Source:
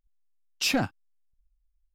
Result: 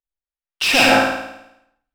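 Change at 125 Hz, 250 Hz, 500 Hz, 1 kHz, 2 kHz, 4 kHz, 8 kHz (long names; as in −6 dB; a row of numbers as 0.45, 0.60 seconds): +3.0, +9.0, +16.0, +18.5, +17.5, +13.0, +8.5 decibels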